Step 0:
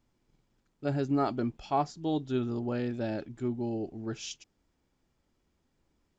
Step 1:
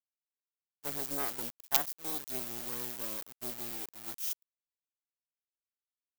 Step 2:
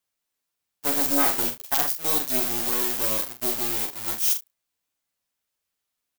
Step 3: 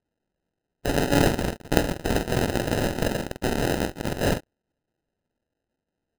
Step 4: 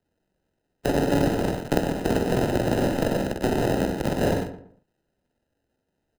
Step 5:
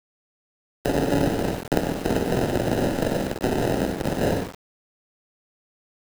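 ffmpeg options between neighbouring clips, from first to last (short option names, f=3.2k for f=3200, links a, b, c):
-af "acrusher=bits=4:dc=4:mix=0:aa=0.000001,agate=range=-33dB:threshold=-38dB:ratio=3:detection=peak,aemphasis=mode=production:type=riaa,volume=-5.5dB"
-filter_complex "[0:a]bandreject=f=400:w=12,asplit=2[a][b];[b]aecho=0:1:11|46|77:0.596|0.473|0.15[c];[a][c]amix=inputs=2:normalize=0,alimiter=level_in=13dB:limit=-1dB:release=50:level=0:latency=1,volume=-1dB"
-af "acrusher=samples=39:mix=1:aa=0.000001"
-filter_complex "[0:a]asplit=2[a][b];[b]aecho=0:1:61.22|96.21:0.355|0.316[c];[a][c]amix=inputs=2:normalize=0,acrossover=split=120|980|4800[d][e][f][g];[d]acompressor=threshold=-38dB:ratio=4[h];[e]acompressor=threshold=-24dB:ratio=4[i];[f]acompressor=threshold=-41dB:ratio=4[j];[g]acompressor=threshold=-45dB:ratio=4[k];[h][i][j][k]amix=inputs=4:normalize=0,asplit=2[l][m];[m]adelay=118,lowpass=f=1.6k:p=1,volume=-11dB,asplit=2[n][o];[o]adelay=118,lowpass=f=1.6k:p=1,volume=0.32,asplit=2[p][q];[q]adelay=118,lowpass=f=1.6k:p=1,volume=0.32[r];[n][p][r]amix=inputs=3:normalize=0[s];[l][s]amix=inputs=2:normalize=0,volume=4.5dB"
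-af "aeval=exprs='val(0)*gte(abs(val(0)),0.0237)':c=same"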